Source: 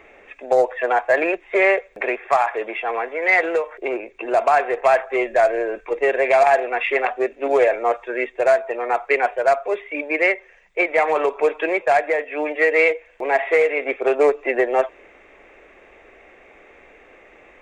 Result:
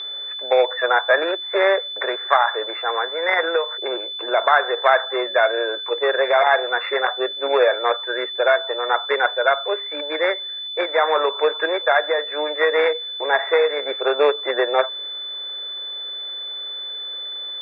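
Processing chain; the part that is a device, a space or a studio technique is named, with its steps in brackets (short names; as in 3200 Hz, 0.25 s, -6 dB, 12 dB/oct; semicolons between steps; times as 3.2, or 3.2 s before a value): toy sound module (decimation joined by straight lines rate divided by 8×; pulse-width modulation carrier 3500 Hz; speaker cabinet 540–4100 Hz, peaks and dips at 700 Hz -10 dB, 1400 Hz +3 dB, 3200 Hz -6 dB); fifteen-band EQ 100 Hz -10 dB, 630 Hz +4 dB, 1600 Hz +8 dB; gain +3.5 dB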